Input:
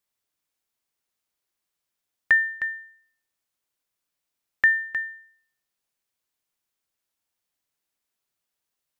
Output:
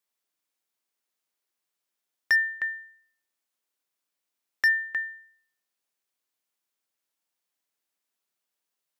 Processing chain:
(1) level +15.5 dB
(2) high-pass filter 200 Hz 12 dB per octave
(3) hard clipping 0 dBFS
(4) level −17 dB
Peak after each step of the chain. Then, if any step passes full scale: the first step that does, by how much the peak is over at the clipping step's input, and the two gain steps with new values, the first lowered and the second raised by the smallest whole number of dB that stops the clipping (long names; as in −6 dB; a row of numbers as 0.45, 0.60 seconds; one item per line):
+5.5, +6.5, 0.0, −17.0 dBFS
step 1, 6.5 dB
step 1 +8.5 dB, step 4 −10 dB